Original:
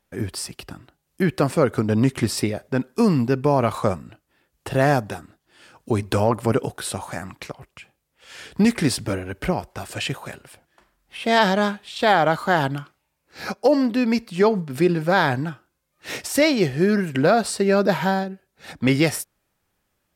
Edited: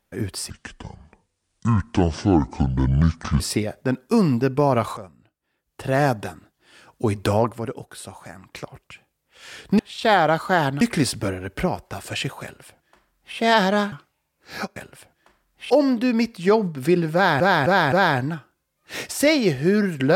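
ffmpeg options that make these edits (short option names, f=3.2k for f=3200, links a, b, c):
-filter_complex "[0:a]asplit=14[a][b][c][d][e][f][g][h][i][j][k][l][m][n];[a]atrim=end=0.504[o];[b]atrim=start=0.5:end=2.27,asetpts=PTS-STARTPTS,asetrate=26901,aresample=44100,atrim=end_sample=127962,asetpts=PTS-STARTPTS[p];[c]atrim=start=2.266:end=3.84,asetpts=PTS-STARTPTS,afade=t=out:st=1.57:d=0.004:c=hsin:silence=0.141254[q];[d]atrim=start=3.84:end=6.44,asetpts=PTS-STARTPTS,afade=t=in:d=1.13:c=qua:silence=0.141254,afade=t=out:st=2.45:d=0.15:silence=0.354813[r];[e]atrim=start=6.44:end=7.31,asetpts=PTS-STARTPTS,volume=-9dB[s];[f]atrim=start=7.31:end=8.662,asetpts=PTS-STARTPTS,afade=t=in:d=0.15:silence=0.354813[t];[g]atrim=start=11.768:end=12.792[u];[h]atrim=start=8.658:end=11.772[v];[i]atrim=start=12.788:end=13.632[w];[j]atrim=start=10.278:end=11.222[x];[k]atrim=start=13.628:end=15.332[y];[l]atrim=start=15.068:end=15.332[z];[m]atrim=start=15.068:end=15.332[aa];[n]atrim=start=15.068[ab];[o][p]acrossfade=d=0.004:c1=hsin:c2=hsin[ac];[q][r][s][t]concat=n=4:v=0:a=1[ad];[ac][ad]acrossfade=d=0.004:c1=hsin:c2=hsin[ae];[ae][u]acrossfade=d=0.004:c1=hsin:c2=hsin[af];[af][v]acrossfade=d=0.004:c1=hsin:c2=hsin[ag];[ag][w]acrossfade=d=0.004:c1=hsin:c2=hsin[ah];[ah][x]acrossfade=d=0.004:c1=hsin:c2=hsin[ai];[ai][y]acrossfade=d=0.004:c1=hsin:c2=hsin[aj];[aj][z]acrossfade=d=0.004:c1=hsin:c2=hsin[ak];[ak][aa]acrossfade=d=0.004:c1=hsin:c2=hsin[al];[al][ab]acrossfade=d=0.004:c1=hsin:c2=hsin"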